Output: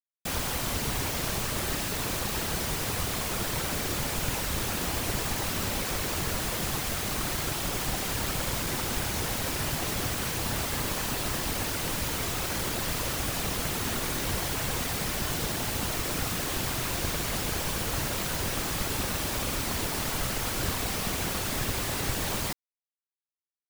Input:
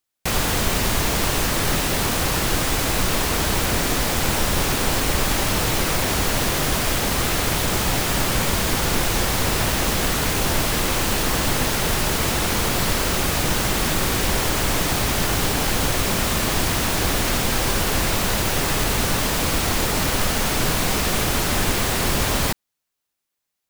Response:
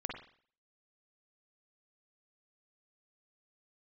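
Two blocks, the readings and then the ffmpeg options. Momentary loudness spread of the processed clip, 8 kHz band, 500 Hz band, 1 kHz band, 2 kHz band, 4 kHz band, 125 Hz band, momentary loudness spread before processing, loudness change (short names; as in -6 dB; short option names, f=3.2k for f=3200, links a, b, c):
0 LU, -8.5 dB, -10.0 dB, -10.0 dB, -9.5 dB, -9.0 dB, -9.0 dB, 0 LU, -9.0 dB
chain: -af "bandreject=f=142.6:t=h:w=4,bandreject=f=285.2:t=h:w=4,bandreject=f=427.8:t=h:w=4,bandreject=f=570.4:t=h:w=4,bandreject=f=713:t=h:w=4,bandreject=f=855.6:t=h:w=4,bandreject=f=998.2:t=h:w=4,bandreject=f=1.1408k:t=h:w=4,bandreject=f=1.2834k:t=h:w=4,bandreject=f=1.426k:t=h:w=4,bandreject=f=1.5686k:t=h:w=4,bandreject=f=1.7112k:t=h:w=4,bandreject=f=1.8538k:t=h:w=4,bandreject=f=1.9964k:t=h:w=4,bandreject=f=2.139k:t=h:w=4,bandreject=f=2.2816k:t=h:w=4,bandreject=f=2.4242k:t=h:w=4,bandreject=f=2.5668k:t=h:w=4,bandreject=f=2.7094k:t=h:w=4,bandreject=f=2.852k:t=h:w=4,bandreject=f=2.9946k:t=h:w=4,bandreject=f=3.1372k:t=h:w=4,bandreject=f=3.2798k:t=h:w=4,bandreject=f=3.4224k:t=h:w=4,bandreject=f=3.565k:t=h:w=4,bandreject=f=3.7076k:t=h:w=4,bandreject=f=3.8502k:t=h:w=4,bandreject=f=3.9928k:t=h:w=4,afftfilt=real='hypot(re,im)*cos(2*PI*random(0))':imag='hypot(re,im)*sin(2*PI*random(1))':win_size=512:overlap=0.75,acrusher=bits=4:mix=0:aa=0.000001,volume=-4dB"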